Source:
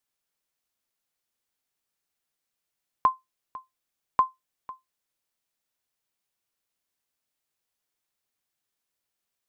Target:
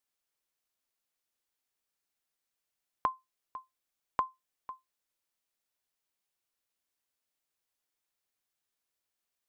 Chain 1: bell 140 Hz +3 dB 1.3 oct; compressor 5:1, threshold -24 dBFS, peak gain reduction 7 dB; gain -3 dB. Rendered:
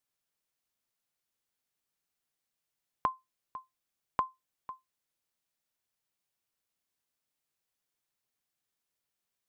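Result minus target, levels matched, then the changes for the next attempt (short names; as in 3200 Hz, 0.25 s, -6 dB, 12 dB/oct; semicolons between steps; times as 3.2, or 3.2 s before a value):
125 Hz band +4.0 dB
change: bell 140 Hz -4 dB 1.3 oct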